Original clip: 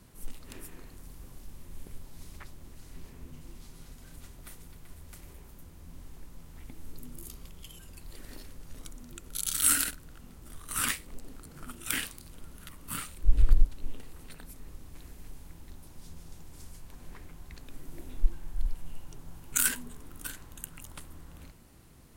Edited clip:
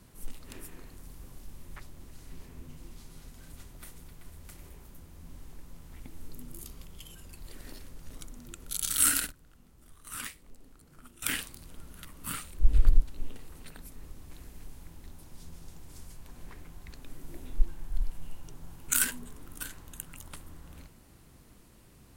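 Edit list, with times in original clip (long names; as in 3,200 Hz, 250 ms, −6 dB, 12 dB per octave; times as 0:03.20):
0:01.76–0:02.40: remove
0:09.96–0:11.86: clip gain −9.5 dB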